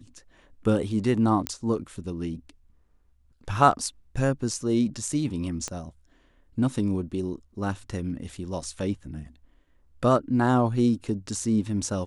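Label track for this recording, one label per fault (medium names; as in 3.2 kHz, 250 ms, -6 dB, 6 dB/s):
1.470000	1.470000	pop -10 dBFS
5.680000	5.680000	pop -18 dBFS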